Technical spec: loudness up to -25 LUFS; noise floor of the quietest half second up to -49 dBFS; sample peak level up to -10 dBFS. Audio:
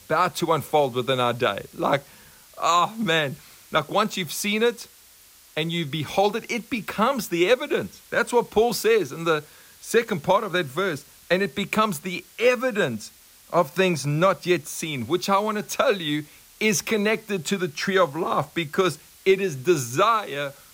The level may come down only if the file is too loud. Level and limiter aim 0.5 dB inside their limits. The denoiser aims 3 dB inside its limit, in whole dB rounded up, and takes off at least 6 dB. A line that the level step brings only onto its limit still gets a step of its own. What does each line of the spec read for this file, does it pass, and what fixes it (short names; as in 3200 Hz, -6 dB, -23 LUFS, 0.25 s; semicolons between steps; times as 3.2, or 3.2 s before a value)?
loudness -23.5 LUFS: fail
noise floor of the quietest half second -52 dBFS: OK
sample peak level -8.0 dBFS: fail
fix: gain -2 dB; limiter -10.5 dBFS